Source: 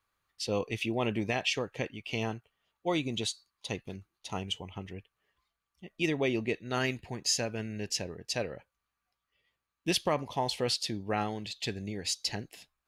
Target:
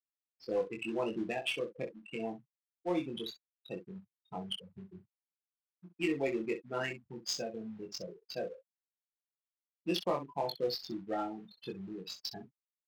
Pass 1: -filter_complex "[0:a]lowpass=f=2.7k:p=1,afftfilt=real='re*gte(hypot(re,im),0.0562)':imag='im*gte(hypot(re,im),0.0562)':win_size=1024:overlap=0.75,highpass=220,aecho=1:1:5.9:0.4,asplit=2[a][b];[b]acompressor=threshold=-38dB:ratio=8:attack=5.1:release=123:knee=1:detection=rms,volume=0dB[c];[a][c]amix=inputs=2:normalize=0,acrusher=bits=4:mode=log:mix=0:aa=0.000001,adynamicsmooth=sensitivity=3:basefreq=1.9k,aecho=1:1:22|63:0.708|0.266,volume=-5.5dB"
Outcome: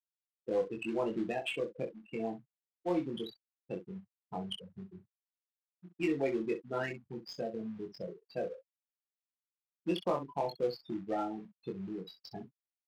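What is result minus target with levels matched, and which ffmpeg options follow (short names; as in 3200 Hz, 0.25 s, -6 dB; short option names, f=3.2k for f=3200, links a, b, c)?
compressor: peak gain reduction -9 dB; 2000 Hz band -2.5 dB
-filter_complex "[0:a]afftfilt=real='re*gte(hypot(re,im),0.0562)':imag='im*gte(hypot(re,im),0.0562)':win_size=1024:overlap=0.75,highpass=220,aecho=1:1:5.9:0.4,asplit=2[a][b];[b]acompressor=threshold=-48dB:ratio=8:attack=5.1:release=123:knee=1:detection=rms,volume=0dB[c];[a][c]amix=inputs=2:normalize=0,acrusher=bits=4:mode=log:mix=0:aa=0.000001,adynamicsmooth=sensitivity=3:basefreq=1.9k,aecho=1:1:22|63:0.708|0.266,volume=-5.5dB"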